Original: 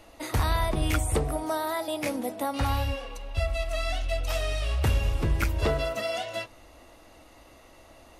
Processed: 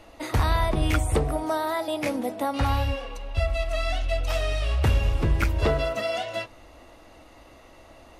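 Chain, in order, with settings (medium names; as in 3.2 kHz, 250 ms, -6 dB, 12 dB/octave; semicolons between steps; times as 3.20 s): treble shelf 6.4 kHz -8 dB; trim +3 dB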